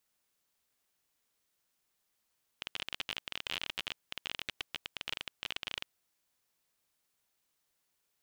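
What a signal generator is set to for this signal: random clicks 27 per s -19 dBFS 3.32 s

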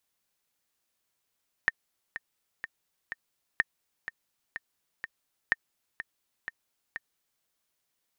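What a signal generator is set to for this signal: metronome 125 bpm, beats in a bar 4, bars 3, 1.82 kHz, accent 12.5 dB -10 dBFS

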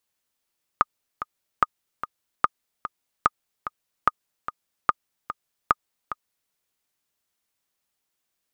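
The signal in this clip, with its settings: metronome 147 bpm, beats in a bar 2, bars 7, 1.23 kHz, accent 12 dB -3.5 dBFS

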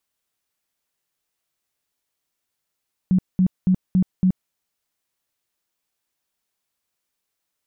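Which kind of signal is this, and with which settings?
tone bursts 185 Hz, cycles 14, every 0.28 s, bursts 5, -13 dBFS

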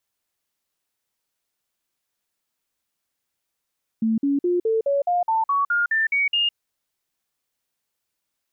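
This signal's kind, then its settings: stepped sine 223 Hz up, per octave 3, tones 12, 0.16 s, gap 0.05 s -17.5 dBFS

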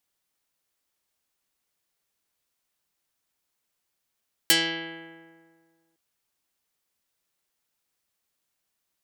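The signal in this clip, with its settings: plucked string E3, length 1.46 s, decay 1.86 s, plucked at 0.13, dark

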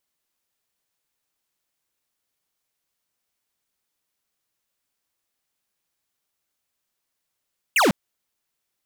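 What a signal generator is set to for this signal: laser zap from 3 kHz, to 160 Hz, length 0.15 s square, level -17 dB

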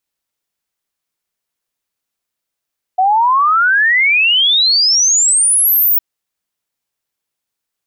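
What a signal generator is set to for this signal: log sweep 730 Hz -> 16 kHz 3.01 s -8.5 dBFS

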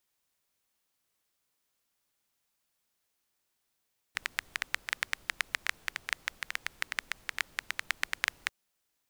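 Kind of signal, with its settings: rain from filtered ticks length 4.34 s, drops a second 9.2, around 1.9 kHz, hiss -22 dB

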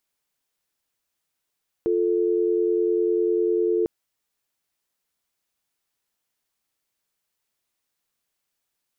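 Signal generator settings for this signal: call progress tone dial tone, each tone -21.5 dBFS 2.00 s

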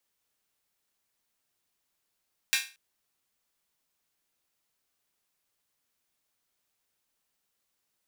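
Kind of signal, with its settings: open hi-hat length 0.23 s, high-pass 2 kHz, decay 0.32 s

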